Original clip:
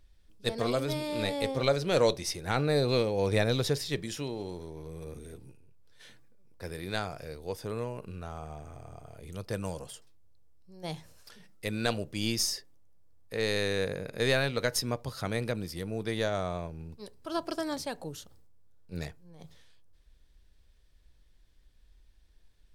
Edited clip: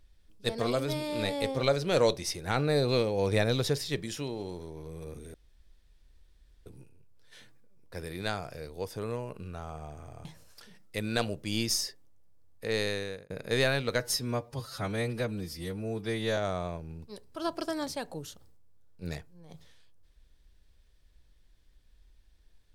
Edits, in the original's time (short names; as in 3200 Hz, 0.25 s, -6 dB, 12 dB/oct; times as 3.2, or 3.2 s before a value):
5.34 insert room tone 1.32 s
8.93–10.94 cut
13.47–13.99 fade out
14.69–16.27 stretch 1.5×